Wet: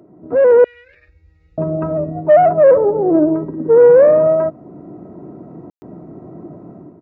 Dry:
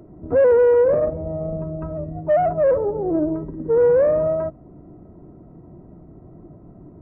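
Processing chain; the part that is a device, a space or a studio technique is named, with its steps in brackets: 0.64–1.58 s: inverse Chebyshev band-stop 120–1200 Hz, stop band 40 dB; call with lost packets (high-pass 180 Hz 12 dB/octave; resampled via 16 kHz; level rider gain up to 11.5 dB; lost packets of 60 ms bursts)

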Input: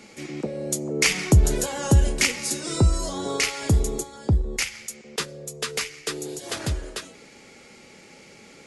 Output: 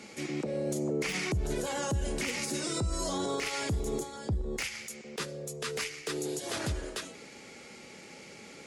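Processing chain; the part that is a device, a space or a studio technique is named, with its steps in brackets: podcast mastering chain (high-pass 71 Hz 6 dB/octave; de-esser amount 60%; compression 3:1, threshold -24 dBFS, peak gain reduction 9 dB; peak limiter -23 dBFS, peak gain reduction 9.5 dB; MP3 96 kbps 44.1 kHz)

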